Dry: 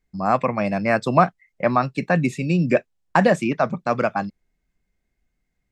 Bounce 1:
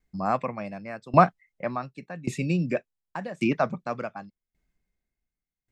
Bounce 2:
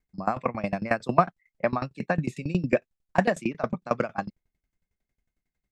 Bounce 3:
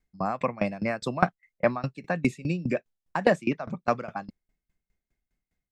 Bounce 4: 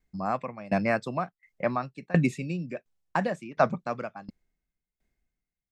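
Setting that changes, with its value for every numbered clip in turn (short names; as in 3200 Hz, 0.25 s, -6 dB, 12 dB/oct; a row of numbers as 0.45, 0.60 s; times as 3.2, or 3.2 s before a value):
dB-ramp tremolo, rate: 0.88, 11, 4.9, 1.4 Hz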